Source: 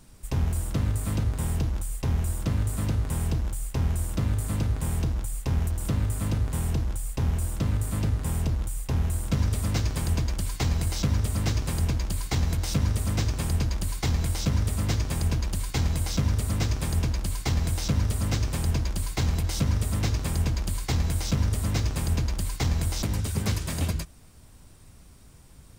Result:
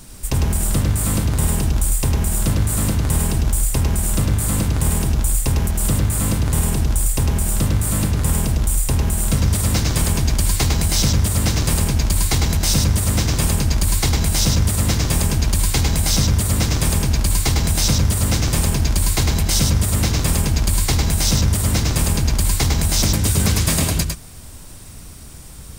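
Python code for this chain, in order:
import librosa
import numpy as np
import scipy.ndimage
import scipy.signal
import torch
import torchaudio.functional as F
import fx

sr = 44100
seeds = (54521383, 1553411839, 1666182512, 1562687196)

p1 = fx.over_compress(x, sr, threshold_db=-29.0, ratio=-1.0)
p2 = x + (p1 * librosa.db_to_amplitude(-0.5))
p3 = fx.high_shelf(p2, sr, hz=4200.0, db=6.5)
p4 = p3 + 10.0 ** (-4.0 / 20.0) * np.pad(p3, (int(103 * sr / 1000.0), 0))[:len(p3)]
y = p4 * librosa.db_to_amplitude(3.5)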